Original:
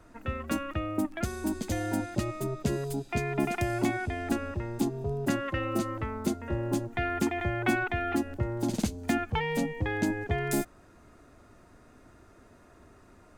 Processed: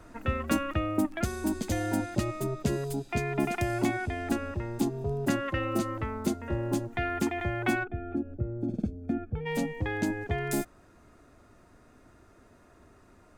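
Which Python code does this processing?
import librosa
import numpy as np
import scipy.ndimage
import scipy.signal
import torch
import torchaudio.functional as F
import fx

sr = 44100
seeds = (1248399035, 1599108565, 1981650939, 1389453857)

y = fx.rider(x, sr, range_db=10, speed_s=2.0)
y = fx.moving_average(y, sr, points=45, at=(7.83, 9.45), fade=0.02)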